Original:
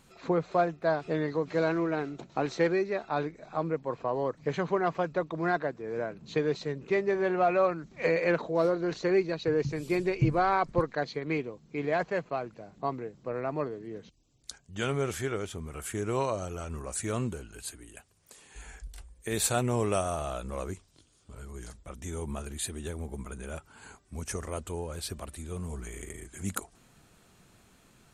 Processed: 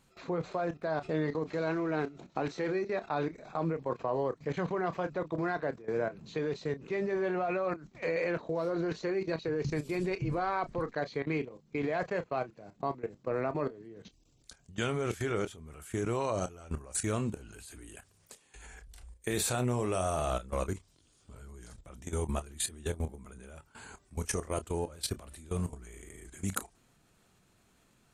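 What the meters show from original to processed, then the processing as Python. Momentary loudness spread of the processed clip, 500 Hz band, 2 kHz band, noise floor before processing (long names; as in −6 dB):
18 LU, −3.5 dB, −4.0 dB, −62 dBFS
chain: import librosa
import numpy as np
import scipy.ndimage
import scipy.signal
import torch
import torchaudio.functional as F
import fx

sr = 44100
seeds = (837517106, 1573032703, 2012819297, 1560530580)

y = fx.level_steps(x, sr, step_db=18)
y = fx.chorus_voices(y, sr, voices=2, hz=0.13, base_ms=29, depth_ms=3.7, mix_pct=20)
y = F.gain(torch.from_numpy(y), 6.5).numpy()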